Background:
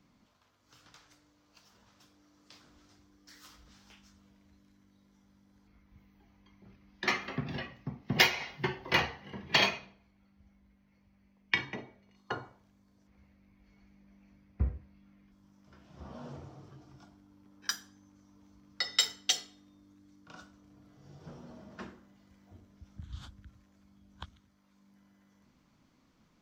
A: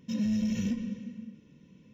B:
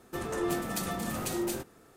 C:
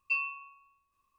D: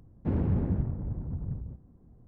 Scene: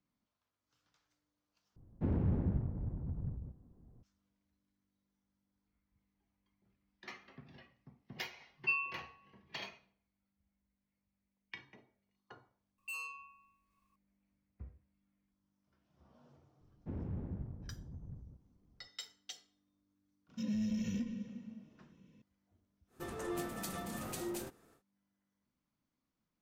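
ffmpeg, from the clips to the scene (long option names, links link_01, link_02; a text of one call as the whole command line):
ffmpeg -i bed.wav -i cue0.wav -i cue1.wav -i cue2.wav -i cue3.wav -filter_complex "[4:a]asplit=2[link_01][link_02];[3:a]asplit=2[link_03][link_04];[0:a]volume=-19.5dB[link_05];[link_03]aresample=11025,aresample=44100[link_06];[link_04]asoftclip=type=tanh:threshold=-37dB[link_07];[link_05]asplit=2[link_08][link_09];[link_08]atrim=end=1.764[link_10];[link_01]atrim=end=2.27,asetpts=PTS-STARTPTS,volume=-5.5dB[link_11];[link_09]atrim=start=4.026[link_12];[link_06]atrim=end=1.18,asetpts=PTS-STARTPTS,volume=-2.5dB,afade=type=in:duration=0.004:curve=hsin,afade=type=out:start_time=1.176:duration=0.004:curve=hsin,adelay=8570[link_13];[link_07]atrim=end=1.18,asetpts=PTS-STARTPTS,volume=-3.5dB,afade=type=in:duration=0.004:curve=hsin,afade=type=out:start_time=1.176:duration=0.004:curve=hsin,adelay=12780[link_14];[link_02]atrim=end=2.27,asetpts=PTS-STARTPTS,volume=-14dB,afade=type=in:duration=0.004:curve=hsin,afade=type=out:start_time=2.266:duration=0.004:curve=hsin,adelay=16610[link_15];[1:a]atrim=end=1.93,asetpts=PTS-STARTPTS,volume=-7dB,afade=type=in:duration=0.004:curve=hsin,afade=type=out:start_time=1.926:duration=0.004:curve=hsin,adelay=20290[link_16];[2:a]atrim=end=1.96,asetpts=PTS-STARTPTS,volume=-8.5dB,afade=type=in:duration=0.1,afade=type=out:start_time=1.86:duration=0.1,adelay=22870[link_17];[link_10][link_11]acrossfade=duration=0.004:curve1=hsin:curve2=hsin[link_18];[link_18][link_12]acrossfade=duration=0.004:curve1=hsin:curve2=hsin[link_19];[link_19][link_13][link_14][link_15][link_16][link_17]amix=inputs=6:normalize=0" out.wav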